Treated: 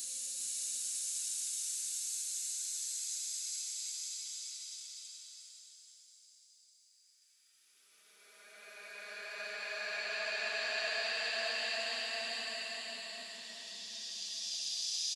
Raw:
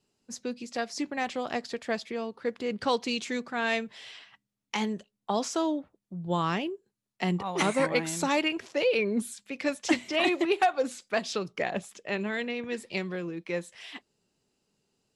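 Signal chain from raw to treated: peaking EQ 5 kHz +5.5 dB 1.7 oct; Paulstretch 42×, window 0.10 s, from 10.90 s; differentiator; delay 405 ms -4 dB

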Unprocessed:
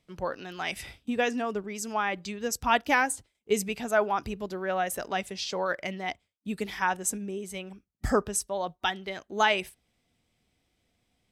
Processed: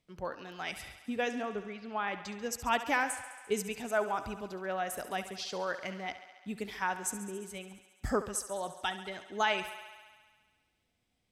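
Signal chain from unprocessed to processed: 1.43–2.08 s: steep low-pass 4.4 kHz 72 dB/octave; on a send: thinning echo 69 ms, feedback 76%, high-pass 280 Hz, level -13 dB; on the sum: trim -6 dB

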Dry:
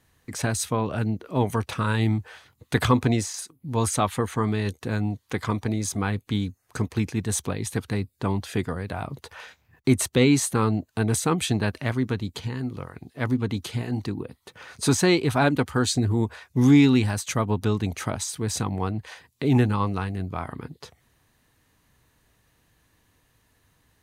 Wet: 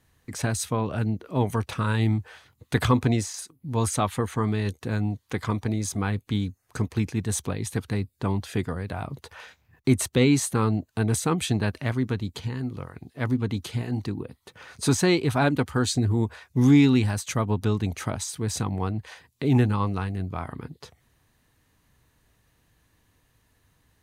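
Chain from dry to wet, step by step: bass shelf 160 Hz +3.5 dB; trim -2 dB

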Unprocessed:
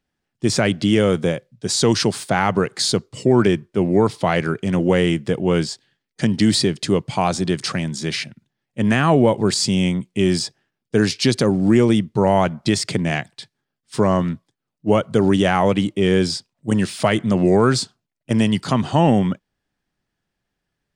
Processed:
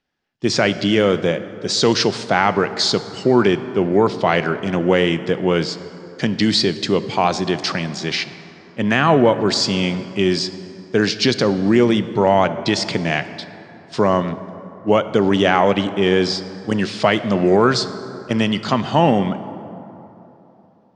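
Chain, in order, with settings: low-pass 5.9 kHz 24 dB/octave; bass shelf 210 Hz -10 dB; plate-style reverb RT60 3.4 s, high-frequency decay 0.45×, DRR 12 dB; trim +3.5 dB

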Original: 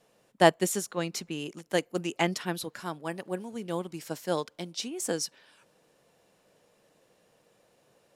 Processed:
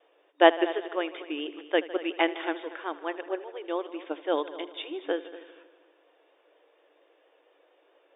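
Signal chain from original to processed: vibrato 4.3 Hz 74 cents; multi-head delay 78 ms, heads all three, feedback 44%, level -19 dB; FFT band-pass 280–3700 Hz; trim +2.5 dB

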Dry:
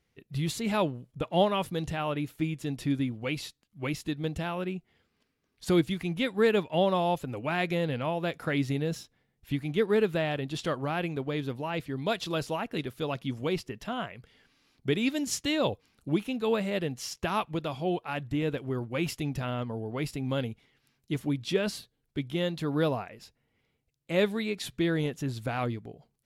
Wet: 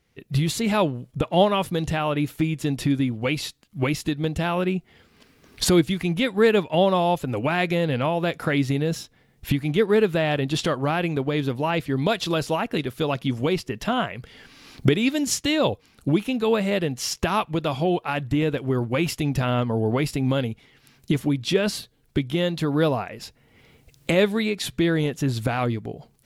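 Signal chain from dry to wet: recorder AGC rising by 19 dB/s; trim +6 dB

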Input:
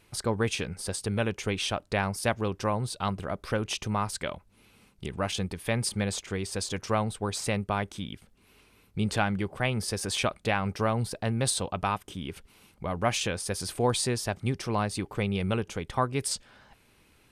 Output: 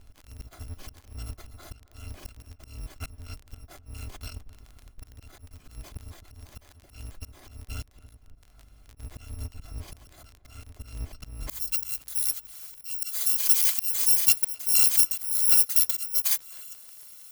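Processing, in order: bit-reversed sample order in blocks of 256 samples; tilt EQ -3.5 dB/octave, from 11.49 s +3.5 dB/octave; slow attack 785 ms; crackle 23 per s -39 dBFS; filtered feedback delay 261 ms, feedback 61%, low-pass 1.2 kHz, level -16 dB; trim +3 dB

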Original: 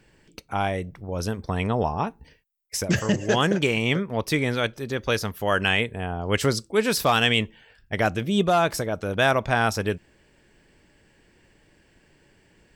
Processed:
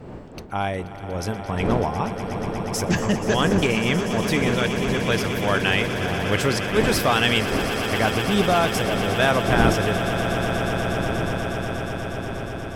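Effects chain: wind noise 390 Hz -32 dBFS; on a send: echo with a slow build-up 120 ms, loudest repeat 8, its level -13 dB

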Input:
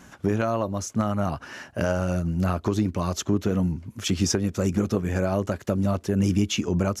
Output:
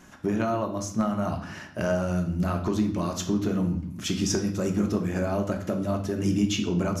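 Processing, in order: on a send: reverberation RT60 0.65 s, pre-delay 3 ms, DRR 3.5 dB; on the sum: trim -3.5 dB

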